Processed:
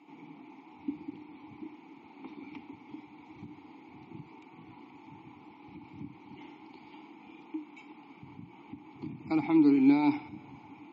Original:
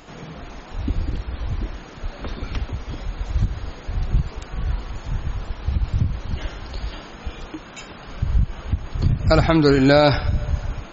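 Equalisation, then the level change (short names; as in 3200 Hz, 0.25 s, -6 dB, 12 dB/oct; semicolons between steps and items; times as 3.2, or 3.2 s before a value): vowel filter u; HPF 120 Hz 24 dB/oct; notches 60/120/180/240/300 Hz; 0.0 dB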